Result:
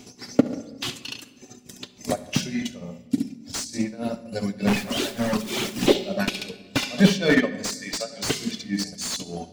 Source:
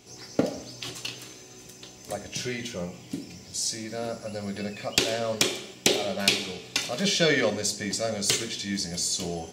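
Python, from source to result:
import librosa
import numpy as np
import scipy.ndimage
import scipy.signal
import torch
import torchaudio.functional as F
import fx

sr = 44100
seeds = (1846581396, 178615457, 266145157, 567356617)

p1 = fx.clip_1bit(x, sr, at=(4.67, 5.88))
p2 = fx.weighting(p1, sr, curve='A', at=(7.73, 8.26))
p3 = fx.dereverb_blind(p2, sr, rt60_s=1.3)
p4 = fx.peak_eq(p3, sr, hz=240.0, db=13.0, octaves=0.29)
p5 = fx.transient(p4, sr, attack_db=8, sustain_db=-9)
p6 = p5 + fx.room_flutter(p5, sr, wall_m=11.9, rt60_s=0.34, dry=0)
p7 = p6 * (1.0 - 0.92 / 2.0 + 0.92 / 2.0 * np.cos(2.0 * np.pi * 3.4 * (np.arange(len(p6)) / sr)))
p8 = fx.room_shoebox(p7, sr, seeds[0], volume_m3=1500.0, walls='mixed', distance_m=0.41)
p9 = fx.slew_limit(p8, sr, full_power_hz=110.0)
y = p9 * librosa.db_to_amplitude(6.5)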